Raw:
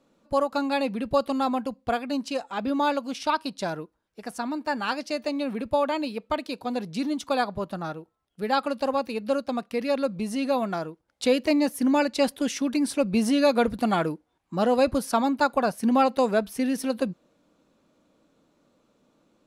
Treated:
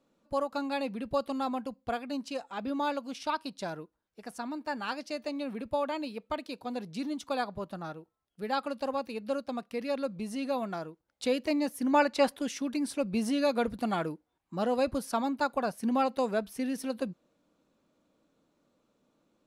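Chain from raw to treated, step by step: 11.93–12.39 bell 1100 Hz +9 dB 2.2 oct; gain -7 dB

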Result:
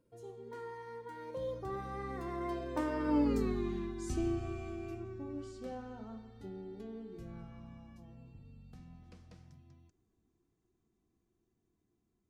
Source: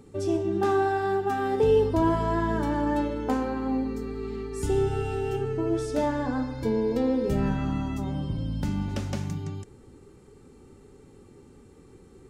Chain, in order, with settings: Doppler pass-by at 3.39, 55 m/s, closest 13 m; gain +1 dB

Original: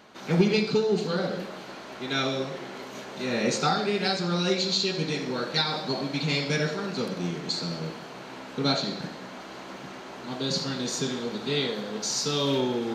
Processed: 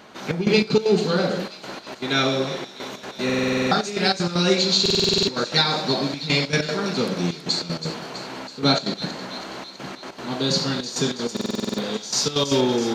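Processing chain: step gate "xxxx..xx.x.xxxx" 193 bpm -12 dB; on a send: thin delay 0.326 s, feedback 65%, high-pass 3700 Hz, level -9 dB; on the sum: stuck buffer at 3.25/4.81/11.32, samples 2048, times 9; gain +6.5 dB

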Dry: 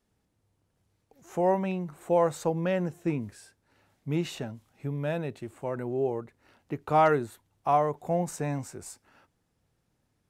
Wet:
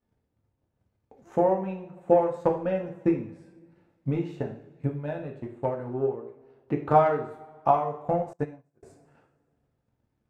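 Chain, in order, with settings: LPF 1500 Hz 6 dB/oct; transient shaper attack +12 dB, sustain -5 dB; two-slope reverb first 0.5 s, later 1.9 s, from -19 dB, DRR 0.5 dB; 8.33–8.83 upward expander 2.5:1, over -40 dBFS; gain -5.5 dB

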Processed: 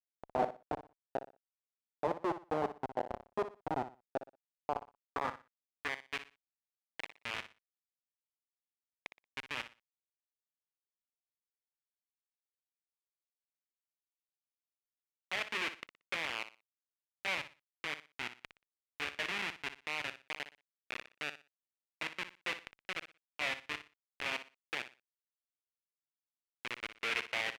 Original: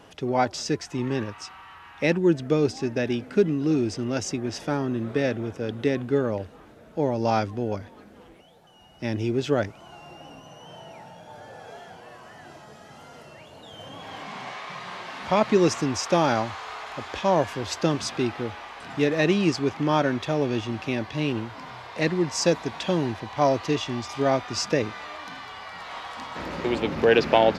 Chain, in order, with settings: downsampling 8000 Hz; Schmitt trigger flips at -18 dBFS; on a send: feedback echo 60 ms, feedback 25%, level -12 dB; on the sum: band-pass sweep 730 Hz -> 2400 Hz, 4.65–6.13; gain +6 dB

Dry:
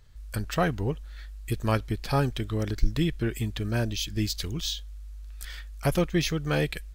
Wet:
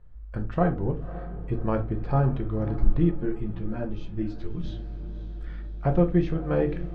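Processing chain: LPF 1100 Hz 12 dB/oct; on a send: diffused feedback echo 0.557 s, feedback 56%, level -14.5 dB; on the sum: shoebox room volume 170 m³, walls furnished, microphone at 0.88 m; 3.11–4.64 ensemble effect

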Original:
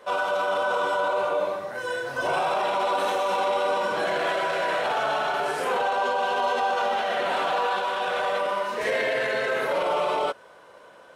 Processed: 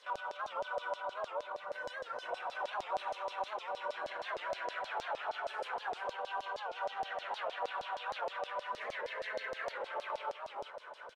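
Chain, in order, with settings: compressor 4:1, threshold -40 dBFS, peak gain reduction 15.5 dB; feedback echo 0.387 s, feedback 28%, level -4 dB; LFO band-pass saw down 6.4 Hz 560–5600 Hz; phaser 1.7 Hz, delay 2.4 ms, feedback 24%; record warp 78 rpm, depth 160 cents; gain +5 dB

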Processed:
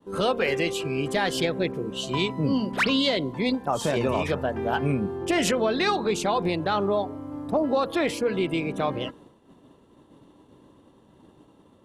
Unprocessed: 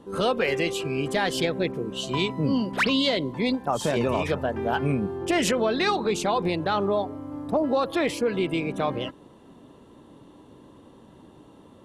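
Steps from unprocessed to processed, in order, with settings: de-hum 234.1 Hz, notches 7; expander -45 dBFS

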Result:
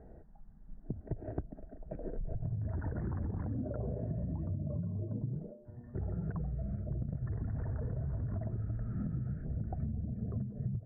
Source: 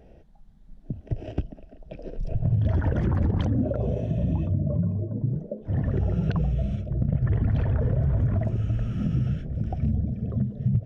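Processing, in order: steep low-pass 1800 Hz 48 dB/oct; notch 540 Hz, Q 12; compressor 10:1, threshold -31 dBFS, peak gain reduction 13.5 dB; 5.51–5.95 resonator 120 Hz, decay 0.61 s, harmonics all, mix 90%; gain -2 dB

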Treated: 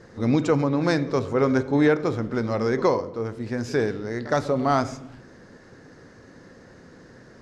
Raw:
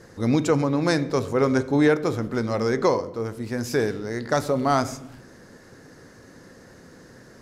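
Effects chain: air absorption 83 m; pre-echo 65 ms -20 dB

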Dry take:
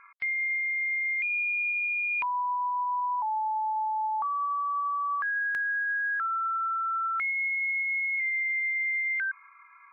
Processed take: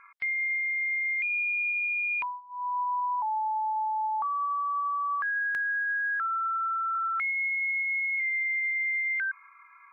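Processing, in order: 2.09–2.81 dip -21 dB, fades 0.32 s equal-power; 6.95–8.71 HPF 560 Hz 24 dB/oct

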